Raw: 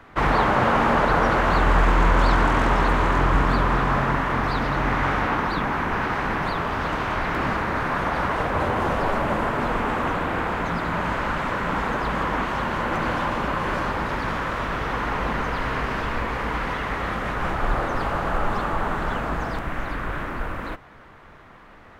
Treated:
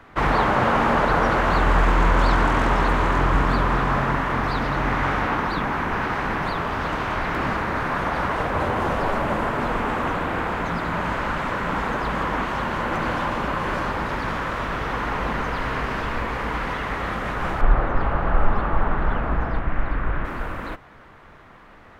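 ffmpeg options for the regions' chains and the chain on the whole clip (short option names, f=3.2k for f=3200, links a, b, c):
-filter_complex "[0:a]asettb=1/sr,asplit=3[a][b][c];[a]atrim=end=17.614[d];[b]atrim=start=17.61:end=20.25,asetpts=PTS-STARTPTS,afade=t=in:d=0.004:c=qsin,afade=t=out:st=2.636:d=0.004:c=qsin,lowpass=2.5k,lowshelf=f=79:g=10[e];[c]atrim=start=20.246[f];[d][e]acrossfade=d=0.004:c1=hsin:c2=qsin[g];[g][f]acrossfade=d=0.004:c1=qsin:c2=hsin"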